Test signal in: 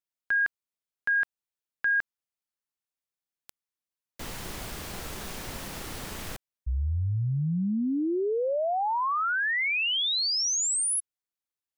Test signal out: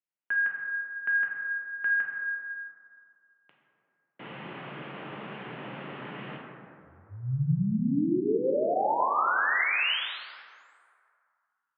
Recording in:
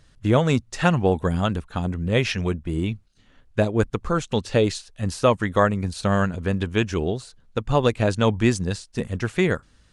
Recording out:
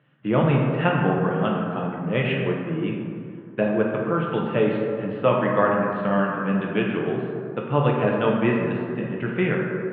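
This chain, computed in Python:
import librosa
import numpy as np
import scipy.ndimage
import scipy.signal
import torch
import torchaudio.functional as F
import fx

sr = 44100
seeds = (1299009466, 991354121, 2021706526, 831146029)

y = scipy.signal.sosfilt(scipy.signal.ellip(4, 1.0, 50, [130.0, 3000.0], 'bandpass', fs=sr, output='sos'), x)
y = fx.rev_plate(y, sr, seeds[0], rt60_s=2.4, hf_ratio=0.4, predelay_ms=0, drr_db=-2.0)
y = F.gain(torch.from_numpy(y), -3.0).numpy()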